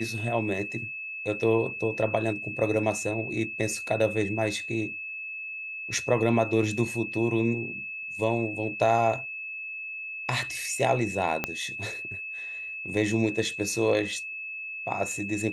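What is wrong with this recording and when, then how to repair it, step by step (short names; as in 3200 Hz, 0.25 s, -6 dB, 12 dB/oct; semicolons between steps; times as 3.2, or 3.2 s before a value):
tone 2600 Hz -34 dBFS
11.44 pop -11 dBFS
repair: de-click; notch 2600 Hz, Q 30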